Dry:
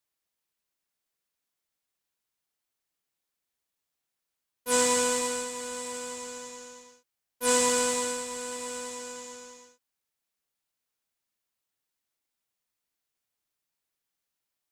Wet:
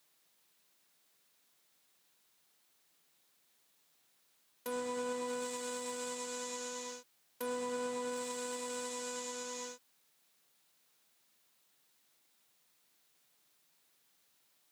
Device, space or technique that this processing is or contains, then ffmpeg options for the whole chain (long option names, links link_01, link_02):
broadcast voice chain: -af "highpass=frequency=120:width=0.5412,highpass=frequency=120:width=1.3066,deesser=0.9,acompressor=threshold=-48dB:ratio=3,equalizer=frequency=3800:width_type=o:width=0.37:gain=3,alimiter=level_in=18.5dB:limit=-24dB:level=0:latency=1:release=273,volume=-18.5dB,volume=12.5dB"